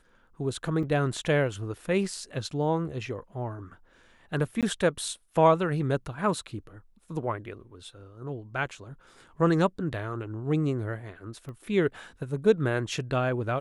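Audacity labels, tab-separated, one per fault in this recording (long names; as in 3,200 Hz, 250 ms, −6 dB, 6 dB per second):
0.830000	0.830000	drop-out 4.8 ms
4.610000	4.630000	drop-out 17 ms
11.490000	11.490000	click −31 dBFS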